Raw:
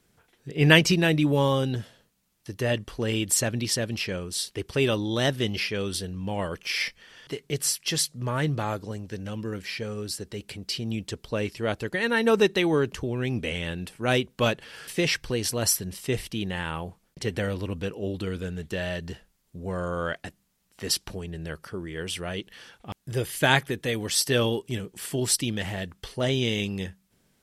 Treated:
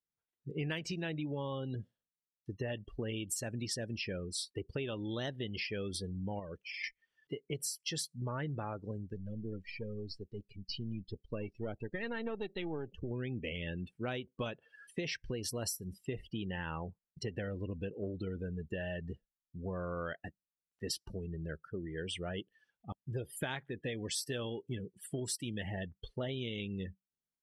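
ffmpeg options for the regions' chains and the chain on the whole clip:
ffmpeg -i in.wav -filter_complex "[0:a]asettb=1/sr,asplit=3[link_01][link_02][link_03];[link_01]atrim=end=6.394[link_04];[link_02]atrim=start=6.39:end=6.84,asetpts=PTS-STARTPTS,afade=type=in:duration=0.004:curve=qsin,afade=type=out:start_time=0.446:duration=0.004:curve=qsin,highshelf=frequency=8000:gain=-4.5,acompressor=threshold=-35dB:ratio=2.5:attack=3.2:release=140:knee=1:detection=peak[link_05];[link_03]atrim=start=6.836[link_06];[link_04][link_05]acrossfade=duration=0.004:curve1=hsin:curve2=qsin[link_07];[link_07][link_06]acrossfade=duration=0.004:curve1=qsin:curve2=hsin,asettb=1/sr,asplit=3[link_08][link_09][link_10];[link_08]atrim=end=9.134[link_11];[link_09]atrim=start=9.13:end=13.11,asetpts=PTS-STARTPTS,afade=type=in:duration=0.004:curve=qsin,afade=type=out:start_time=3.976:duration=0.004:curve=qsin,aeval=exprs='if(lt(val(0),0),0.447*val(0),val(0))':channel_layout=same,lowpass=6500,equalizer=frequency=1300:width_type=o:width=1.3:gain=-3[link_12];[link_10]atrim=start=13.106[link_13];[link_11][link_12]acrossfade=duration=0.004:curve1=hsin:curve2=qsin[link_14];[link_14][link_13]acrossfade=duration=0.004:curve1=qsin:curve2=hsin,afftdn=noise_reduction=31:noise_floor=-34,acompressor=threshold=-30dB:ratio=12,volume=-4.5dB" out.wav

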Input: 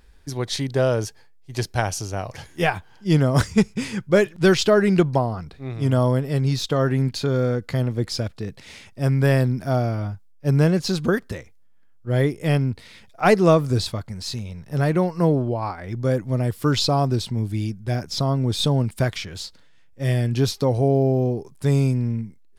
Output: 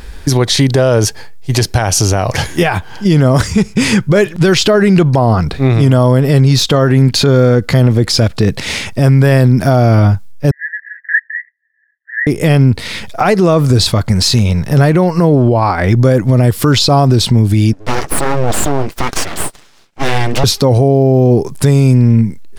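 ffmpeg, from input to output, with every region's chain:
ffmpeg -i in.wav -filter_complex "[0:a]asettb=1/sr,asplit=3[link_01][link_02][link_03];[link_01]atrim=end=10.514[link_04];[link_02]atrim=start=10.51:end=12.27,asetpts=PTS-STARTPTS,afade=type=in:duration=0.004:curve=qsin,afade=type=out:start_time=1.756:duration=0.004:curve=qsin,volume=16.5dB,asoftclip=hard,volume=-16.5dB,asuperpass=centerf=1800:order=8:qfactor=6[link_05];[link_03]atrim=start=12.266[link_06];[link_04][link_05]acrossfade=duration=0.004:curve1=hsin:curve2=qsin[link_07];[link_07][link_06]acrossfade=duration=0.004:curve1=qsin:curve2=hsin,asettb=1/sr,asplit=3[link_08][link_09][link_10];[link_08]atrim=end=17.734[link_11];[link_09]atrim=start=17.73:end=20.44,asetpts=PTS-STARTPTS,afade=type=in:duration=0.004:curve=qsin,afade=type=out:start_time=2.706:duration=0.004:curve=qsin,highpass=210,lowpass=6500,flanger=delay=2.5:depth=4.7:regen=-30:speed=1.4:shape=sinusoidal,aeval=exprs='abs(val(0))':channel_layout=same[link_12];[link_10]atrim=start=20.436[link_13];[link_11][link_12]acrossfade=duration=0.004:curve1=hsin:curve2=qsin[link_14];[link_14][link_13]acrossfade=duration=0.004:curve1=qsin:curve2=hsin,acompressor=threshold=-31dB:ratio=2,alimiter=level_in=24.5dB:limit=-1dB:release=50:level=0:latency=1,volume=-1dB" out.wav

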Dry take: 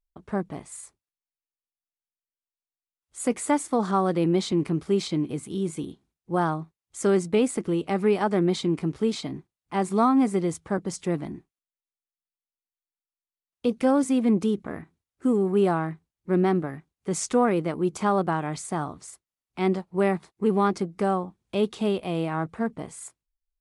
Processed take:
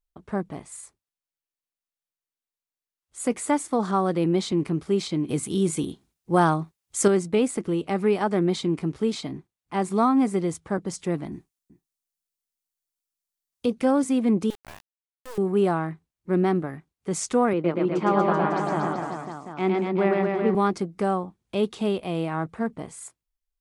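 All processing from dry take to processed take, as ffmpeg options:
ffmpeg -i in.wav -filter_complex "[0:a]asettb=1/sr,asplit=3[link_01][link_02][link_03];[link_01]atrim=end=5.284[link_04];[link_02]atrim=start=5.28:end=7.08,asetpts=PTS-STARTPTS,afade=type=in:duration=0.004:curve=qsin,afade=type=out:start_time=1.796:duration=0.004:curve=qsin,highshelf=frequency=3700:gain=6,acontrast=24[link_05];[link_03]atrim=start=7.076[link_06];[link_04][link_05]acrossfade=duration=0.004:curve1=hsin:curve2=qsin[link_07];[link_07][link_06]acrossfade=duration=0.004:curve1=qsin:curve2=hsin,asettb=1/sr,asplit=3[link_08][link_09][link_10];[link_08]atrim=end=11.324[link_11];[link_09]atrim=start=11.32:end=13.66,asetpts=PTS-STARTPTS,afade=type=in:duration=0.004:curve=qsin,afade=type=out:start_time=2.336:duration=0.004:curve=qsin,bass=frequency=250:gain=3,treble=frequency=4000:gain=9,aecho=1:1:377:0.133,atrim=end_sample=103194[link_12];[link_10]atrim=start=13.656[link_13];[link_11][link_12]acrossfade=duration=0.004:curve1=hsin:curve2=qsin[link_14];[link_14][link_13]acrossfade=duration=0.004:curve1=qsin:curve2=hsin,asettb=1/sr,asplit=3[link_15][link_16][link_17];[link_15]atrim=end=14.504[link_18];[link_16]atrim=start=14.5:end=15.38,asetpts=PTS-STARTPTS,afade=type=in:duration=0.004:curve=qsin,afade=type=out:start_time=0.876:duration=0.004:curve=qsin,highpass=frequency=590:width=0.5412,highpass=frequency=590:width=1.3066,acrusher=bits=4:dc=4:mix=0:aa=0.000001[link_19];[link_17]atrim=start=15.376[link_20];[link_18][link_19]acrossfade=duration=0.004:curve1=hsin:curve2=qsin[link_21];[link_21][link_20]acrossfade=duration=0.004:curve1=qsin:curve2=hsin,asettb=1/sr,asplit=3[link_22][link_23][link_24];[link_22]atrim=end=17.534[link_25];[link_23]atrim=start=17.53:end=20.55,asetpts=PTS-STARTPTS,afade=type=in:duration=0.004:curve=qsin,afade=type=out:start_time=3.016:duration=0.004:curve=qsin,highpass=160,lowpass=3300,aecho=1:1:110|236.5|382|549.3|741.7:0.794|0.631|0.501|0.398|0.316,atrim=end_sample=133182[link_26];[link_24]atrim=start=20.546[link_27];[link_25][link_26]acrossfade=duration=0.004:curve1=hsin:curve2=qsin[link_28];[link_28][link_27]acrossfade=duration=0.004:curve1=qsin:curve2=hsin" out.wav

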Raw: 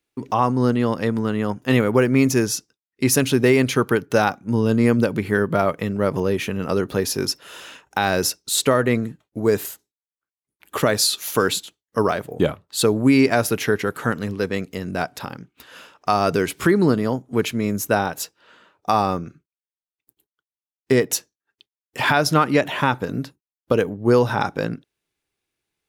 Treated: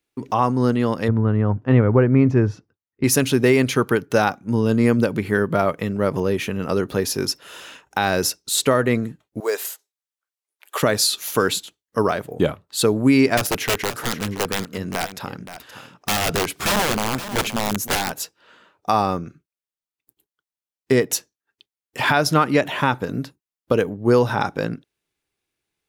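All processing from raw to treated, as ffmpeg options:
ffmpeg -i in.wav -filter_complex "[0:a]asettb=1/sr,asplit=3[link_01][link_02][link_03];[link_01]atrim=end=1.084[link_04];[link_02]atrim=start=1.08:end=3.04,asetpts=PTS-STARTPTS,afade=type=in:duration=0.004:curve=qsin,afade=type=out:start_time=1.956:duration=0.004:curve=qsin,lowpass=1500,equalizer=frequency=99:width=2.2:gain=13[link_05];[link_03]atrim=start=3.036[link_06];[link_04][link_05]acrossfade=duration=0.004:curve1=hsin:curve2=qsin[link_07];[link_07][link_06]acrossfade=duration=0.004:curve1=qsin:curve2=hsin,asettb=1/sr,asplit=3[link_08][link_09][link_10];[link_08]atrim=end=9.404[link_11];[link_09]atrim=start=9.4:end=10.83,asetpts=PTS-STARTPTS,afade=type=in:duration=0.004:curve=qsin,afade=type=out:start_time=1.426:duration=0.004:curve=qsin,highpass=frequency=470:width=0.5412,highpass=frequency=470:width=1.3066,equalizer=frequency=6200:width=0.33:gain=3,acrusher=bits=7:mode=log:mix=0:aa=0.000001[link_12];[link_10]atrim=start=10.826[link_13];[link_11][link_12]acrossfade=duration=0.004:curve1=hsin:curve2=qsin[link_14];[link_14][link_13]acrossfade=duration=0.004:curve1=qsin:curve2=hsin,asettb=1/sr,asplit=3[link_15][link_16][link_17];[link_15]atrim=end=13.374[link_18];[link_16]atrim=start=13.37:end=18.12,asetpts=PTS-STARTPTS,afade=type=in:duration=0.004:curve=qsin,afade=type=out:start_time=4.746:duration=0.004:curve=qsin,aeval=exprs='(mod(5.31*val(0)+1,2)-1)/5.31':channel_layout=same,aecho=1:1:523:0.237,atrim=end_sample=209475[link_19];[link_17]atrim=start=18.116[link_20];[link_18][link_19]acrossfade=duration=0.004:curve1=hsin:curve2=qsin[link_21];[link_21][link_20]acrossfade=duration=0.004:curve1=qsin:curve2=hsin" out.wav

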